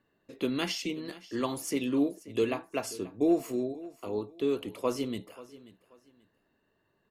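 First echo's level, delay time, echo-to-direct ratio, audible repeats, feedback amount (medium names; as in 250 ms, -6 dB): -18.5 dB, 534 ms, -18.0 dB, 2, 27%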